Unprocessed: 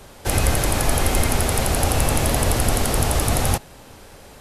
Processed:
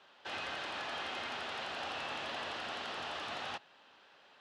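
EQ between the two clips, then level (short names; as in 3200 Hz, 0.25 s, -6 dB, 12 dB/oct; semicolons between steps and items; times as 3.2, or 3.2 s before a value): speaker cabinet 100–2900 Hz, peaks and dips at 120 Hz -7 dB, 480 Hz -3 dB, 2200 Hz -9 dB; differentiator; +3.0 dB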